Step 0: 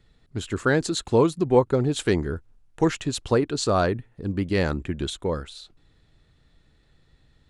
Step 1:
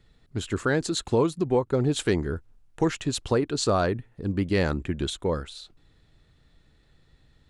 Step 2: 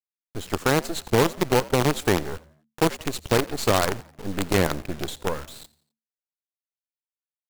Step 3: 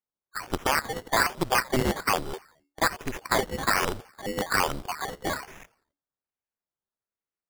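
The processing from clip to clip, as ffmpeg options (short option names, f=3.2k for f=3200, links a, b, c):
-af "alimiter=limit=-13dB:level=0:latency=1:release=291"
-filter_complex "[0:a]acrusher=bits=4:dc=4:mix=0:aa=0.000001,asplit=4[a][b][c][d];[b]adelay=86,afreqshift=74,volume=-21.5dB[e];[c]adelay=172,afreqshift=148,volume=-28.6dB[f];[d]adelay=258,afreqshift=222,volume=-35.8dB[g];[a][e][f][g]amix=inputs=4:normalize=0,volume=1.5dB"
-af "afftfilt=real='real(if(lt(b,272),68*(eq(floor(b/68),0)*3+eq(floor(b/68),1)*2+eq(floor(b/68),2)*1+eq(floor(b/68),3)*0)+mod(b,68),b),0)':imag='imag(if(lt(b,272),68*(eq(floor(b/68),0)*3+eq(floor(b/68),1)*2+eq(floor(b/68),2)*1+eq(floor(b/68),3)*0)+mod(b,68),b),0)':win_size=2048:overlap=0.75,acrusher=samples=14:mix=1:aa=0.000001:lfo=1:lforange=8.4:lforate=1.2,volume=-4dB"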